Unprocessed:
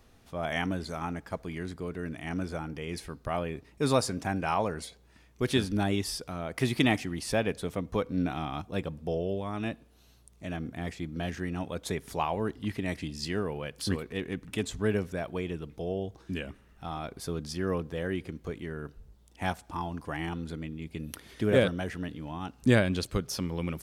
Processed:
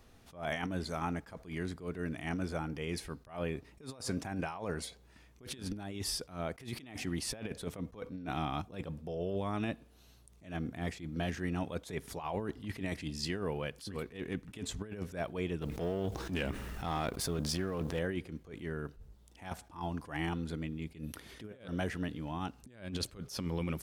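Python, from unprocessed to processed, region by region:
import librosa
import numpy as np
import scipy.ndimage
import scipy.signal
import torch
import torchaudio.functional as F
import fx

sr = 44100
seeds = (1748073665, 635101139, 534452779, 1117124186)

y = fx.chain(x, sr, fx.law_mismatch(coded='A'),
    fx.transient(attack_db=-8, sustain_db=1),
    fx.env_flatten(amount_pct=70), at=(15.61, 17.99))
y = fx.over_compress(y, sr, threshold_db=-32.0, ratio=-0.5)
y = fx.attack_slew(y, sr, db_per_s=160.0)
y = F.gain(torch.from_numpy(y), -3.0).numpy()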